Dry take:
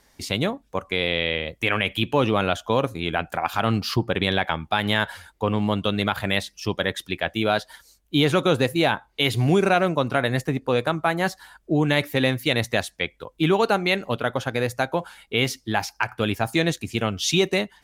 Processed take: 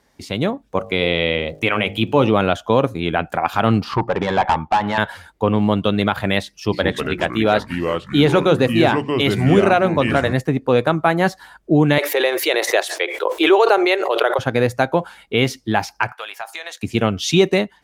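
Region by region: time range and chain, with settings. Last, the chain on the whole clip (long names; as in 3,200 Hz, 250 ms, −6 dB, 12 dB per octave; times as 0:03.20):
0:00.77–0:02.28: notch filter 1,700 Hz, Q 8 + hum removal 51.05 Hz, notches 17 + surface crackle 240 per second −50 dBFS
0:03.84–0:04.98: low-pass filter 2,500 Hz 6 dB per octave + parametric band 910 Hz +14 dB 0.78 octaves + tube saturation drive 17 dB, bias 0.45
0:06.58–0:10.33: mains-hum notches 60/120/180/240/300/360 Hz + delay with pitch and tempo change per echo 142 ms, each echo −4 semitones, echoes 3, each echo −6 dB
0:11.98–0:14.39: elliptic high-pass filter 360 Hz + background raised ahead of every attack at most 37 dB per second
0:16.12–0:16.83: high-pass filter 730 Hz 24 dB per octave + downward compressor, threshold −29 dBFS
whole clip: high-pass filter 200 Hz 6 dB per octave; spectral tilt −2 dB per octave; automatic gain control gain up to 8 dB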